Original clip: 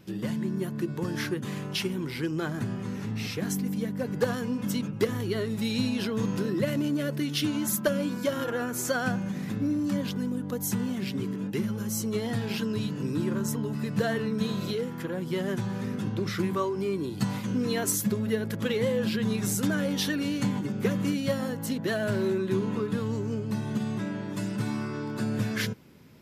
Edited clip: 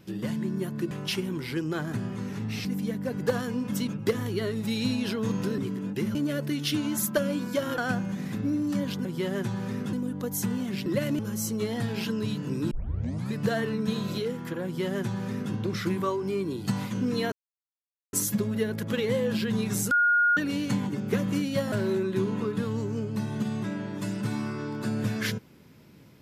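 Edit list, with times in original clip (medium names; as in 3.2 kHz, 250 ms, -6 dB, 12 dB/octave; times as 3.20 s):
0.91–1.58 s: delete
3.32–3.59 s: delete
6.52–6.85 s: swap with 11.15–11.72 s
8.48–8.95 s: delete
13.24 s: tape start 0.62 s
15.18–16.06 s: copy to 10.22 s
17.85 s: insert silence 0.81 s
19.63–20.09 s: bleep 1.43 kHz -18.5 dBFS
21.44–22.07 s: delete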